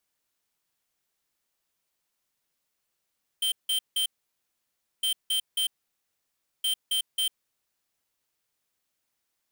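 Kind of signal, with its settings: beep pattern square 3130 Hz, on 0.10 s, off 0.17 s, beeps 3, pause 0.97 s, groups 3, -26 dBFS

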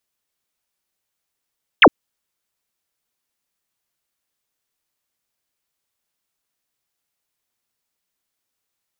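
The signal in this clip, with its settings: laser zap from 3600 Hz, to 210 Hz, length 0.06 s sine, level -4 dB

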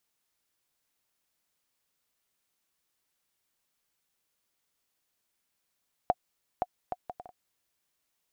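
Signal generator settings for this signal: bouncing ball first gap 0.52 s, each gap 0.58, 726 Hz, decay 42 ms -12 dBFS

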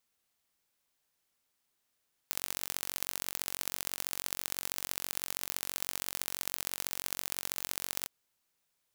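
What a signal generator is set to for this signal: pulse train 46.1/s, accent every 3, -5.5 dBFS 5.77 s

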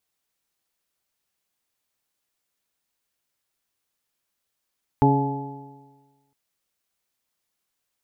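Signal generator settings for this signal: stretched partials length 1.31 s, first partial 138 Hz, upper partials 0/-4/-16.5/-13/0 dB, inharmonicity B 0.002, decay 1.35 s, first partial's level -17 dB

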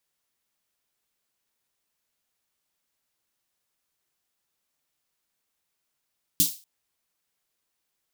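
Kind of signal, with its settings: snare drum length 0.24 s, tones 170 Hz, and 290 Hz, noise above 3600 Hz, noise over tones 10 dB, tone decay 0.17 s, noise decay 0.33 s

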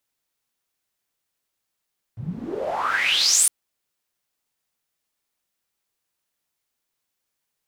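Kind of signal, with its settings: swept filtered noise pink, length 1.31 s bandpass, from 110 Hz, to 10000 Hz, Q 9.1, exponential, gain ramp +18 dB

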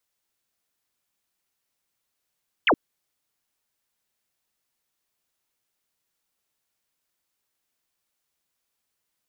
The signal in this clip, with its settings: laser zap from 3400 Hz, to 220 Hz, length 0.07 s sine, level -15 dB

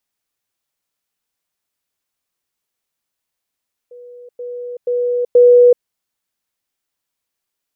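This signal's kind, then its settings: level ladder 488 Hz -34.5 dBFS, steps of 10 dB, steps 4, 0.38 s 0.10 s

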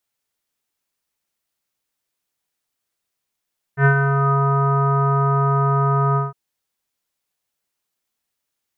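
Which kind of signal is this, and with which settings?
synth note square C#3 24 dB/oct, low-pass 1200 Hz, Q 7.4, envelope 0.5 oct, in 0.60 s, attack 82 ms, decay 0.09 s, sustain -6 dB, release 0.17 s, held 2.39 s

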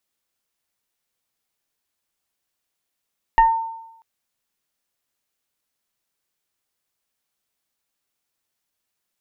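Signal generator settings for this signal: FM tone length 0.64 s, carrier 905 Hz, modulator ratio 1.03, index 0.67, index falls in 0.33 s exponential, decay 0.89 s, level -8 dB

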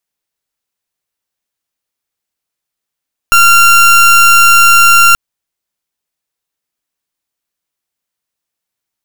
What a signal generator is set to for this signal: pulse 1380 Hz, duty 30% -5 dBFS 1.83 s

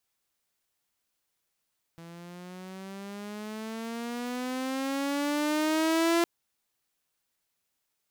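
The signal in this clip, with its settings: gliding synth tone saw, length 4.26 s, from 166 Hz, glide +12.5 st, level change +22.5 dB, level -19 dB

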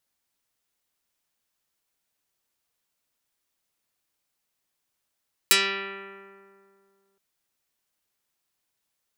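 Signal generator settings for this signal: plucked string G3, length 1.67 s, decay 2.39 s, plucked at 0.37, dark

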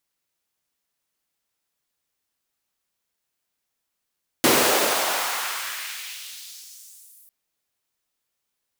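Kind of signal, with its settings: swept filtered noise pink, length 2.85 s highpass, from 290 Hz, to 12000 Hz, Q 1.4, exponential, gain ramp -30 dB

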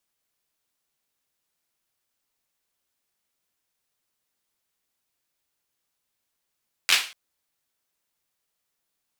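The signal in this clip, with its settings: hand clap length 0.24 s, apart 11 ms, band 2700 Hz, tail 0.36 s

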